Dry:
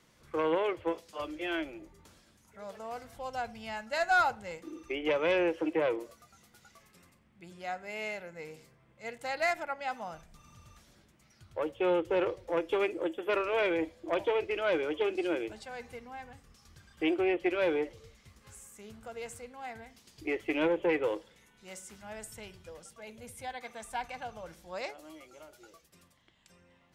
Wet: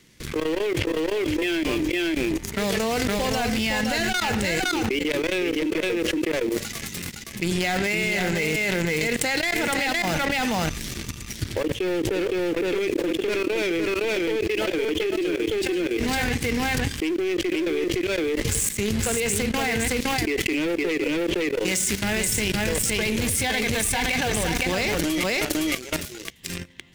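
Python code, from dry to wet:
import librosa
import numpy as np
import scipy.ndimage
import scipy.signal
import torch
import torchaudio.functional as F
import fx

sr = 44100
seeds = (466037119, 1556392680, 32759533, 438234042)

p1 = fx.leveller(x, sr, passes=2)
p2 = np.where(np.abs(p1) >= 10.0 ** (-33.0 / 20.0), p1, 0.0)
p3 = p1 + (p2 * librosa.db_to_amplitude(-5.0))
p4 = fx.leveller(p3, sr, passes=1)
p5 = fx.band_shelf(p4, sr, hz=870.0, db=-11.0, octaves=1.7)
p6 = fx.level_steps(p5, sr, step_db=23)
p7 = p6 + 10.0 ** (-4.5 / 20.0) * np.pad(p6, (int(513 * sr / 1000.0), 0))[:len(p6)]
p8 = fx.env_flatten(p7, sr, amount_pct=100)
y = p8 * librosa.db_to_amplitude(-4.0)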